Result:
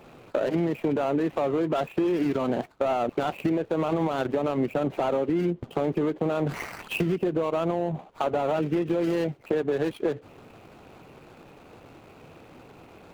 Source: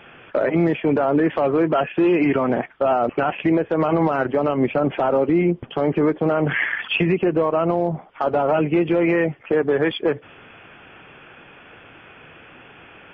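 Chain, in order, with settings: median filter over 25 samples; compression 4:1, threshold -23 dBFS, peak gain reduction 8 dB

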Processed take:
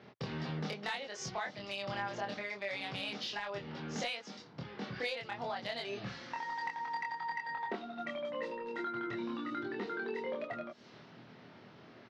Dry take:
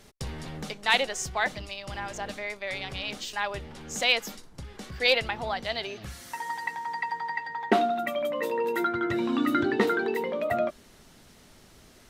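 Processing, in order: level-controlled noise filter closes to 2.3 kHz, open at -25.5 dBFS; elliptic band-pass 120–5300 Hz, stop band 40 dB; compression 16:1, threshold -36 dBFS, peak gain reduction 20 dB; saturation -27.5 dBFS, distortion -24 dB; doubling 25 ms -2 dB

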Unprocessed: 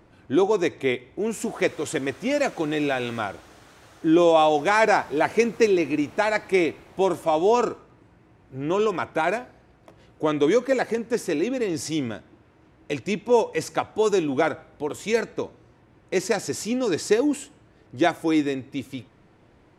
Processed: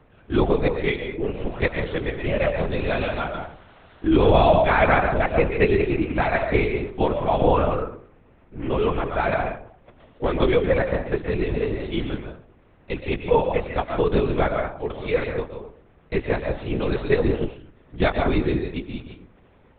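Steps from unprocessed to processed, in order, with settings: on a send at -4 dB: reverberation RT60 0.50 s, pre-delay 90 ms; on the sum: LPC vocoder at 8 kHz whisper

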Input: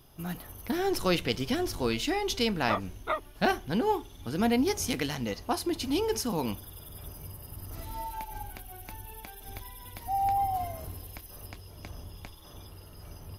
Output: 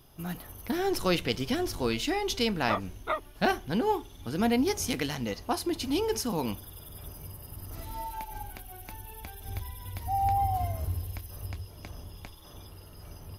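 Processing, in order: 9.20–11.65 s: peaking EQ 78 Hz +12.5 dB 1.2 oct

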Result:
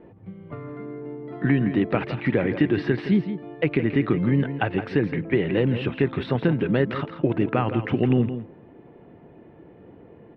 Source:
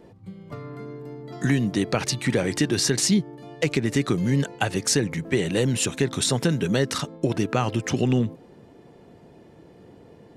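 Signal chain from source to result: inverse Chebyshev low-pass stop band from 6.5 kHz, stop band 50 dB; peaking EQ 320 Hz +3.5 dB 0.48 oct; delay 166 ms -10.5 dB

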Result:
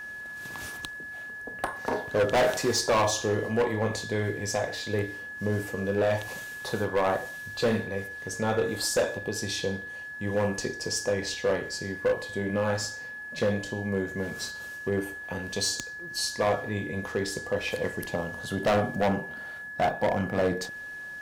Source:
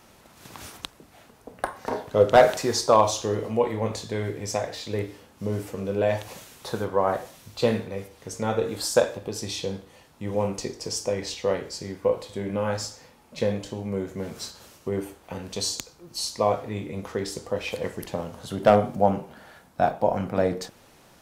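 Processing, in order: whistle 1.7 kHz -37 dBFS; hard clipper -19.5 dBFS, distortion -7 dB

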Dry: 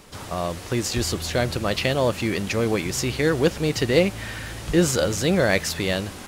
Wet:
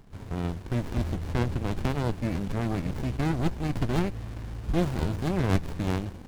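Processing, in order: tracing distortion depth 0.089 ms; bass shelf 120 Hz +8.5 dB; sliding maximum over 65 samples; trim -5 dB

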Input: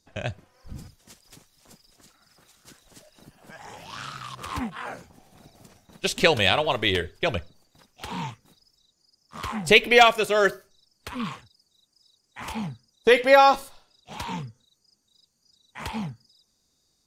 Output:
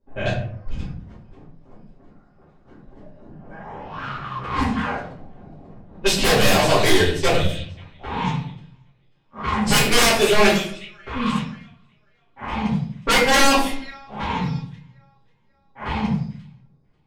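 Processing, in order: on a send: feedback echo behind a high-pass 539 ms, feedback 48%, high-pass 5.6 kHz, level -5.5 dB; on the sum: wavefolder -19 dBFS; simulated room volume 83 m³, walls mixed, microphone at 2.4 m; level-controlled noise filter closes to 730 Hz, open at -13.5 dBFS; trim -1.5 dB

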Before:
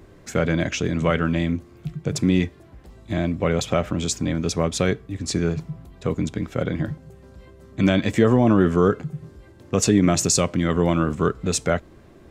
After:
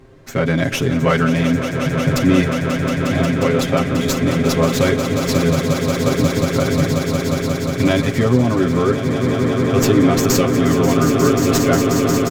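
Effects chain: low-pass 9.6 kHz; comb 7.5 ms, depth 91%; on a send: echo with a slow build-up 179 ms, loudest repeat 8, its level -10 dB; on the sum: level rider gain up to 4 dB; sliding maximum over 3 samples

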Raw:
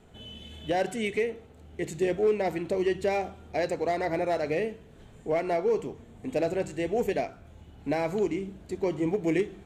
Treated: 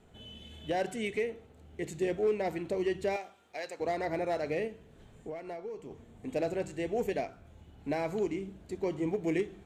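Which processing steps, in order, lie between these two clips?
3.16–3.80 s: high-pass 1.3 kHz 6 dB/octave; 4.67–5.91 s: compression 6:1, threshold -34 dBFS, peak gain reduction 12 dB; trim -4.5 dB

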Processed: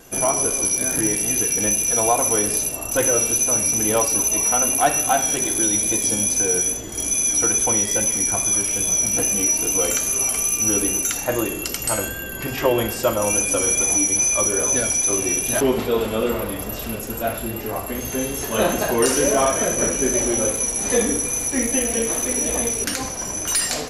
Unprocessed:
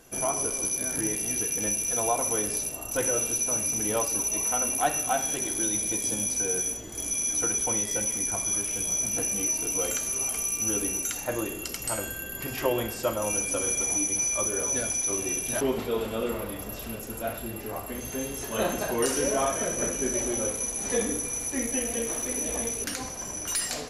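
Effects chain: 12.08–12.79 s: treble shelf 5.8 kHz -5.5 dB; in parallel at -9 dB: overload inside the chain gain 21 dB; on the sum: vibrato 2.4 Hz 27 cents; trim +5.5 dB

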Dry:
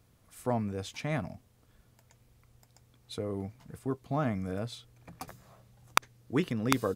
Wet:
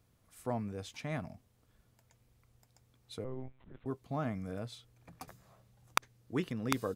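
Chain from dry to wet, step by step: 3.24–3.86 s: monotone LPC vocoder at 8 kHz 130 Hz; trim -5.5 dB

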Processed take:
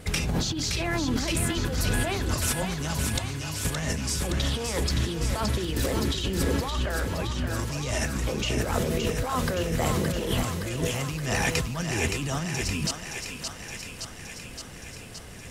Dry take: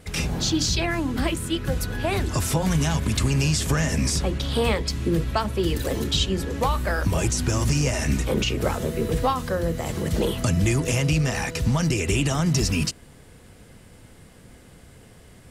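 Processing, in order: 3.18–3.65 s: feedback comb 100 Hz, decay 1.1 s, harmonics odd, mix 90%; compressor with a negative ratio -28 dBFS, ratio -1; 6.70–7.56 s: low-pass 2.6 kHz; thinning echo 569 ms, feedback 72%, high-pass 530 Hz, level -5 dB

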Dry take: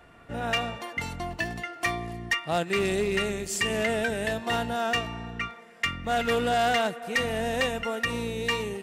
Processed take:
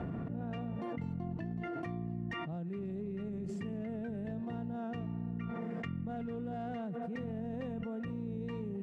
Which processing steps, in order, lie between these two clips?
band-pass filter 170 Hz, Q 2; level flattener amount 100%; trim -7 dB

